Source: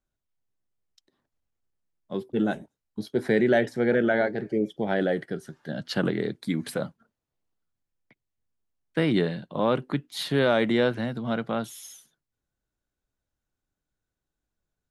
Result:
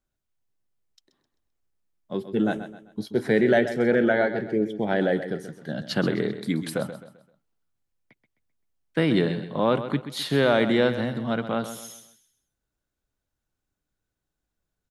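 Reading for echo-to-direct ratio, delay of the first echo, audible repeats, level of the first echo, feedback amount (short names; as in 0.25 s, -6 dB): -11.0 dB, 0.13 s, 3, -11.5 dB, 37%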